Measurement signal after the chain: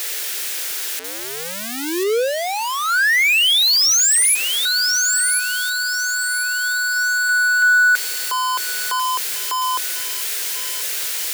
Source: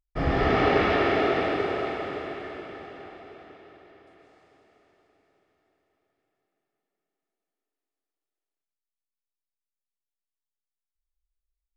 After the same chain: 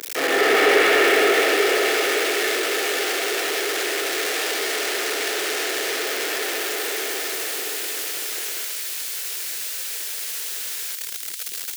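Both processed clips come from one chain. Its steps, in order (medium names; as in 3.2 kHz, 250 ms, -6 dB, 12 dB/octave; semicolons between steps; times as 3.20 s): jump at every zero crossing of -24 dBFS; high-pass 420 Hz 24 dB/octave; high-order bell 850 Hz -9 dB 1.3 oct; feedback echo behind a high-pass 1043 ms, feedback 30%, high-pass 3.1 kHz, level -4 dB; in parallel at -6.5 dB: hard clipper -21 dBFS; on the sum: trim +5 dB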